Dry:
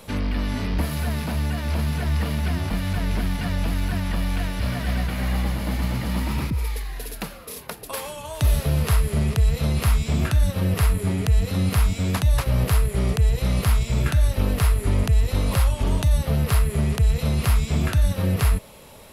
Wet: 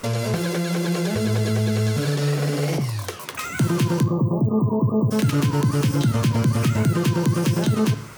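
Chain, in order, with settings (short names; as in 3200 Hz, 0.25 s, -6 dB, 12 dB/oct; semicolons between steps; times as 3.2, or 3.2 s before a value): spectral delete 9.43–11.95, 520–7400 Hz; spring tank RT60 1.1 s, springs 33/43 ms, DRR 10 dB; in parallel at +3 dB: compressor, threshold -26 dBFS, peak gain reduction 12.5 dB; on the sum: speed mistake 33 rpm record played at 78 rpm; gain -4 dB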